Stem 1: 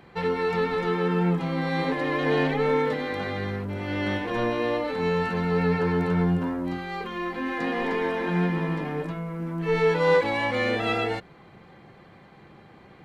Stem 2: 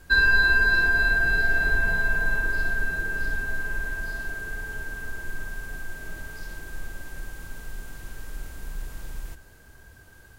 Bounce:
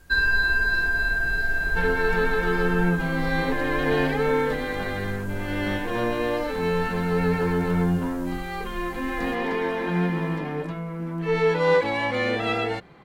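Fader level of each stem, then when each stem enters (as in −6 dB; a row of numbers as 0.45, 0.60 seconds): +0.5, −2.5 decibels; 1.60, 0.00 seconds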